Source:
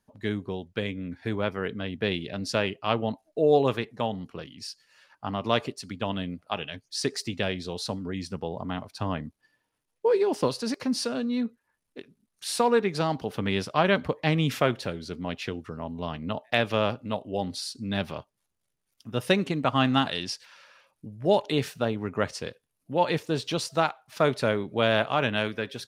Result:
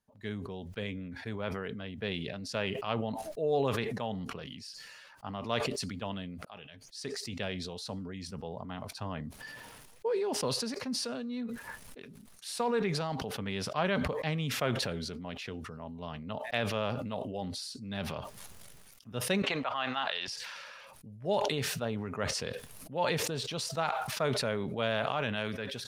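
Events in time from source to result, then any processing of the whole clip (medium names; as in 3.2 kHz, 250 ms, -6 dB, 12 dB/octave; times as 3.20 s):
6.45–7.33 s: fade in
19.42–20.28 s: three-band isolator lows -23 dB, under 510 Hz, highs -17 dB, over 4.6 kHz
whole clip: peaking EQ 320 Hz -7.5 dB 0.3 oct; decay stretcher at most 24 dB/s; trim -8.5 dB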